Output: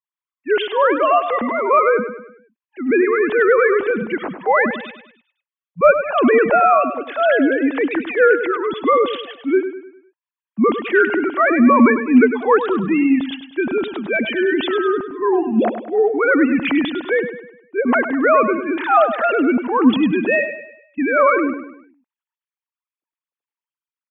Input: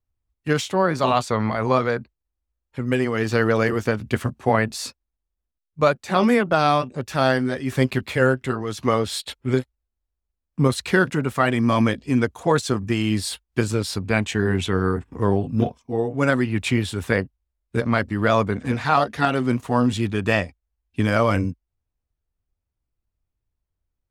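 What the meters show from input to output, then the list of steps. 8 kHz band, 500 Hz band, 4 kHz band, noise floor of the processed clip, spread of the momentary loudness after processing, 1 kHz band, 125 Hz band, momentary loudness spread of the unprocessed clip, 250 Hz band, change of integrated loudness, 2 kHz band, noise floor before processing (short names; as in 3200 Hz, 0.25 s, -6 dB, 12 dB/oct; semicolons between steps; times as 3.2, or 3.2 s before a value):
under -40 dB, +6.5 dB, -1.0 dB, under -85 dBFS, 10 LU, +6.0 dB, -15.0 dB, 7 LU, +5.0 dB, +5.5 dB, +6.0 dB, -82 dBFS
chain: sine-wave speech; de-esser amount 75%; transient shaper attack -4 dB, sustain +4 dB; feedback echo 0.101 s, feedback 43%, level -10 dB; gain +5.5 dB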